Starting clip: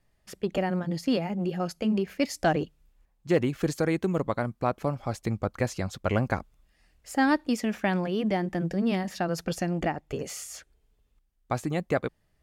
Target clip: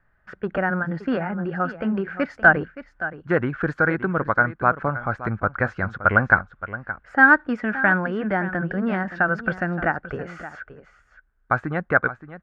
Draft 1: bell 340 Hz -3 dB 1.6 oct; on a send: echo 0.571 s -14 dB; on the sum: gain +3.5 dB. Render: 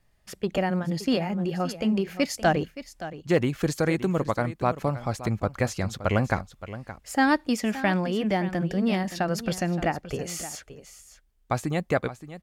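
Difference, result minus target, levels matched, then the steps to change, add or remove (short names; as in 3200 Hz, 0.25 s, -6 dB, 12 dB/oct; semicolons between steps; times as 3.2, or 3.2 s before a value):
2000 Hz band -8.5 dB
add first: synth low-pass 1500 Hz, resonance Q 8.6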